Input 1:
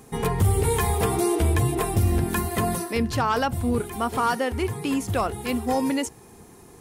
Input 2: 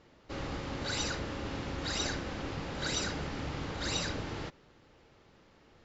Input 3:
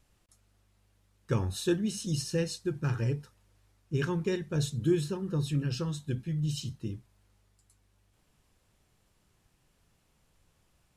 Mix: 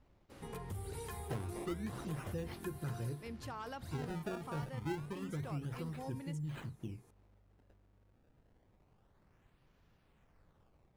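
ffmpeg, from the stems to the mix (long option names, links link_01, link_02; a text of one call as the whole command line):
ffmpeg -i stem1.wav -i stem2.wav -i stem3.wav -filter_complex "[0:a]adelay=300,volume=-15dB[link_01];[1:a]volume=-18dB[link_02];[2:a]acrusher=samples=24:mix=1:aa=0.000001:lfo=1:lforange=38.4:lforate=0.28,highshelf=frequency=3500:gain=-11,volume=0.5dB[link_03];[link_01][link_02][link_03]amix=inputs=3:normalize=0,acompressor=threshold=-47dB:ratio=2" out.wav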